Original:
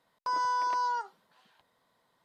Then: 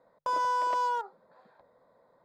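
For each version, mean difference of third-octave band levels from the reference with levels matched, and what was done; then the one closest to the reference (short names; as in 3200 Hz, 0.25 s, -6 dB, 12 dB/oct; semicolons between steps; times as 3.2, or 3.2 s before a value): 3.0 dB: Wiener smoothing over 15 samples; bell 540 Hz +12 dB 0.53 oct; notches 50/100/150 Hz; in parallel at -1 dB: compressor, threshold -48 dBFS, peak gain reduction 19 dB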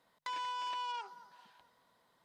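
5.0 dB: notches 50/100/150 Hz; compressor 5:1, threshold -35 dBFS, peak gain reduction 7.5 dB; thinning echo 0.223 s, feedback 49%, high-pass 600 Hz, level -17 dB; core saturation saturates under 2800 Hz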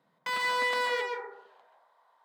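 9.0 dB: self-modulated delay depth 0.61 ms; high shelf 3000 Hz -10.5 dB; high-pass sweep 160 Hz -> 830 Hz, 0.19–1.81; plate-style reverb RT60 0.75 s, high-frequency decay 0.25×, pre-delay 0.12 s, DRR 1 dB; gain +1.5 dB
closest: first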